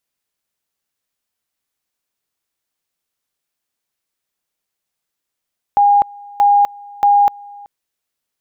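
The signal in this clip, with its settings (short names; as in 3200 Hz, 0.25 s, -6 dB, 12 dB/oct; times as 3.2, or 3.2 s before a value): two-level tone 814 Hz -7.5 dBFS, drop 25 dB, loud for 0.25 s, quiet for 0.38 s, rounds 3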